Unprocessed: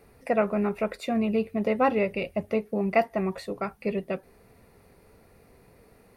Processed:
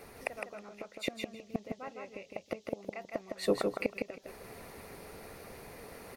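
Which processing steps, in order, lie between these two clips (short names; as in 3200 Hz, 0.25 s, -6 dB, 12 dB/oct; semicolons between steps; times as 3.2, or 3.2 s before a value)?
low shelf 300 Hz -9 dB; flipped gate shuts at -25 dBFS, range -28 dB; reverse; upward compressor, threshold -52 dBFS; reverse; band noise 2800–6800 Hz -78 dBFS; on a send: feedback echo 0.159 s, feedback 19%, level -4 dB; on the sum: harmonic-percussive split harmonic -4 dB; gain +9.5 dB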